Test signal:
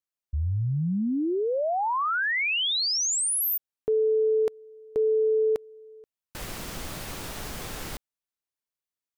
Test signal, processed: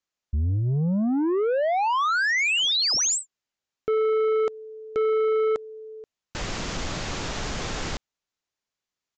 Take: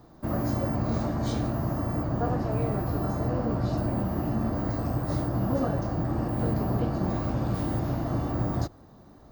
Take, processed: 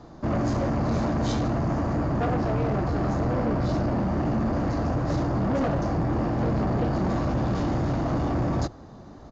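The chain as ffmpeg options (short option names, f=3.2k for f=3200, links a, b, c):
-af "adynamicequalizer=threshold=0.00447:dfrequency=110:dqfactor=7.9:tfrequency=110:tqfactor=7.9:attack=5:release=100:ratio=0.375:range=3.5:mode=cutabove:tftype=bell,aresample=16000,asoftclip=type=tanh:threshold=-28dB,aresample=44100,volume=7.5dB"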